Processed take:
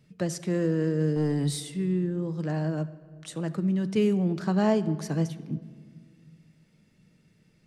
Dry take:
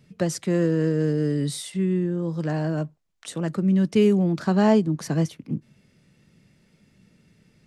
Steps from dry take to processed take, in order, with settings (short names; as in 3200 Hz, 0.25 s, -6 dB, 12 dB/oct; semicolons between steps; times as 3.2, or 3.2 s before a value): 1.16–1.6 sample leveller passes 1; on a send: reverb RT60 1.8 s, pre-delay 6 ms, DRR 12.5 dB; on the sum: gain -5 dB